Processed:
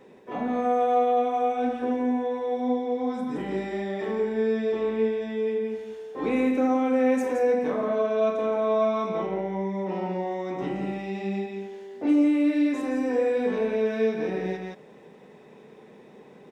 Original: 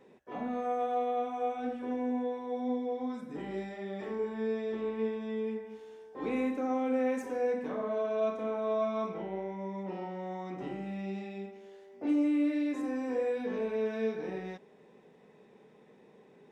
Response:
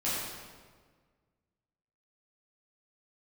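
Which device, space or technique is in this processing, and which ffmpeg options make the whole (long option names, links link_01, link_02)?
ducked delay: -filter_complex "[0:a]asplit=3[link_01][link_02][link_03];[link_02]adelay=171,volume=-2.5dB[link_04];[link_03]apad=whole_len=735977[link_05];[link_04][link_05]sidechaincompress=threshold=-34dB:ratio=8:attack=16:release=520[link_06];[link_01][link_06]amix=inputs=2:normalize=0,volume=7.5dB"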